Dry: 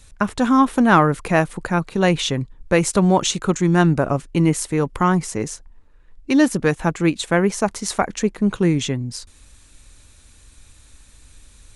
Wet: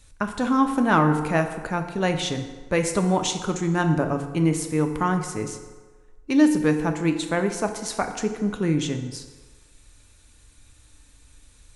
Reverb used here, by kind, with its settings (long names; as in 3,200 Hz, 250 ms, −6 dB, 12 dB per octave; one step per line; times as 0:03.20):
feedback delay network reverb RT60 1.4 s, low-frequency decay 0.75×, high-frequency decay 0.65×, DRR 5.5 dB
level −6 dB